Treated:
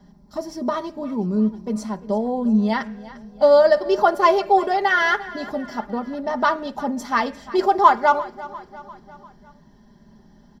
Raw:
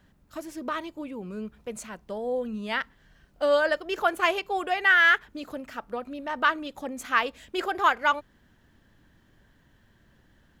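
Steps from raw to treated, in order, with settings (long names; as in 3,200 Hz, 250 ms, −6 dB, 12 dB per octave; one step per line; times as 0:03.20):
comb filter 4.9 ms
repeating echo 348 ms, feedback 53%, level −18 dB
convolution reverb RT60 0.40 s, pre-delay 3 ms, DRR 13.5 dB
level −3.5 dB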